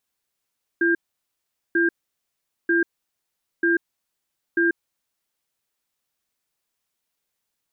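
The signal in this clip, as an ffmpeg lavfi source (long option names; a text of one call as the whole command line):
ffmpeg -f lavfi -i "aevalsrc='0.112*(sin(2*PI*339*t)+sin(2*PI*1600*t))*clip(min(mod(t,0.94),0.14-mod(t,0.94))/0.005,0,1)':duration=3.94:sample_rate=44100" out.wav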